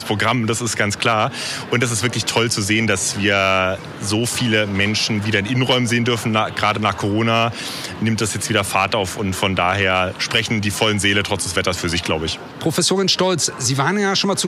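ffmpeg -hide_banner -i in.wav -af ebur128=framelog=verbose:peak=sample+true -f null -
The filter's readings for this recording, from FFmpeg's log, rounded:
Integrated loudness:
  I:         -18.0 LUFS
  Threshold: -28.0 LUFS
Loudness range:
  LRA:         1.1 LU
  Threshold: -38.0 LUFS
  LRA low:   -18.6 LUFS
  LRA high:  -17.5 LUFS
Sample peak:
  Peak:       -3.2 dBFS
True peak:
  Peak:       -3.2 dBFS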